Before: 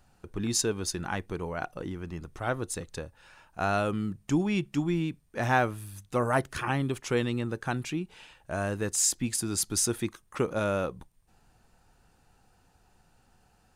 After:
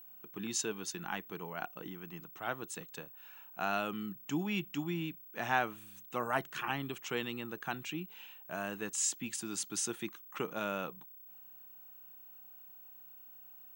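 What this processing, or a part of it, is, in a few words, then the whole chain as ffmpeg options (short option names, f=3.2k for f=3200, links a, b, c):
old television with a line whistle: -af "highpass=f=170:w=0.5412,highpass=f=170:w=1.3066,equalizer=f=250:t=q:w=4:g=-6,equalizer=f=380:t=q:w=4:g=-4,equalizer=f=540:t=q:w=4:g=-8,equalizer=f=2.9k:t=q:w=4:g=6,equalizer=f=4.9k:t=q:w=4:g=-6,lowpass=f=8.2k:w=0.5412,lowpass=f=8.2k:w=1.3066,aeval=exprs='val(0)+0.00501*sin(2*PI*15734*n/s)':c=same,volume=-5dB"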